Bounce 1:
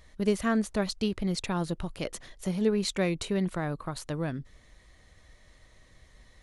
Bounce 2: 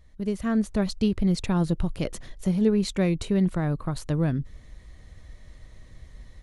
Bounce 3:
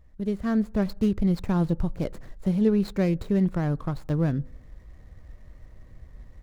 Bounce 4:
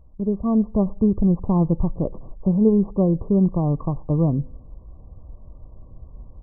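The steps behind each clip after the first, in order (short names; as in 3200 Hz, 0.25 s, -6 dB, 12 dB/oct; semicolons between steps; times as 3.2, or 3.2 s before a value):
low shelf 300 Hz +11.5 dB; AGC gain up to 10 dB; gain -9 dB
median filter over 15 samples; on a send at -23.5 dB: reverb RT60 0.70 s, pre-delay 3 ms
brick-wall FIR low-pass 1200 Hz; gain +5 dB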